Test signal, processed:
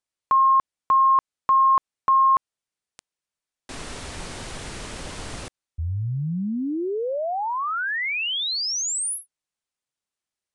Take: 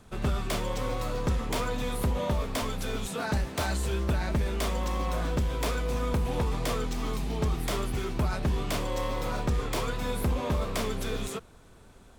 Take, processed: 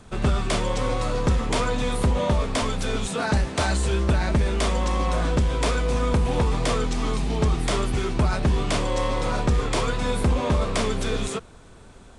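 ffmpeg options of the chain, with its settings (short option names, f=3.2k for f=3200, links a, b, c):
-af "aresample=22050,aresample=44100,volume=6.5dB"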